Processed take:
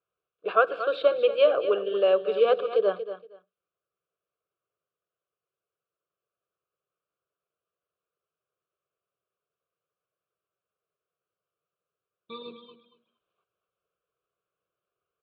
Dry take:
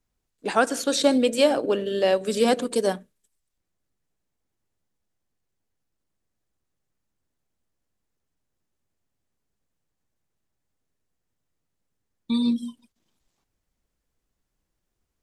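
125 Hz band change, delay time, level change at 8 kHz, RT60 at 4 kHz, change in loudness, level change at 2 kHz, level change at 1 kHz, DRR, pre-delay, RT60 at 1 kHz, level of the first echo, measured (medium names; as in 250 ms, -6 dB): no reading, 233 ms, under -40 dB, no reverb, -1.0 dB, -3.0 dB, -1.5 dB, no reverb, no reverb, no reverb, -11.5 dB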